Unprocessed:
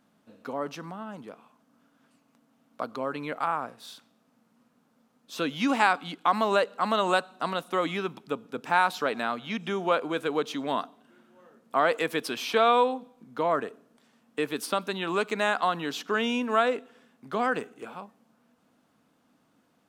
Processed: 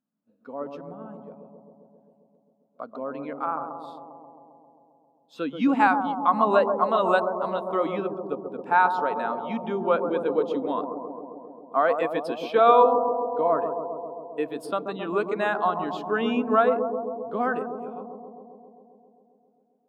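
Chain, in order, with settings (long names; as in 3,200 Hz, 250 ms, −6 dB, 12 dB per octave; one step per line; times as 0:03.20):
notch filter 5,900 Hz, Q 12
on a send: bucket-brigade delay 133 ms, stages 1,024, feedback 83%, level −5 dB
on the sum: every bin expanded away from the loudest bin 1.5 to 1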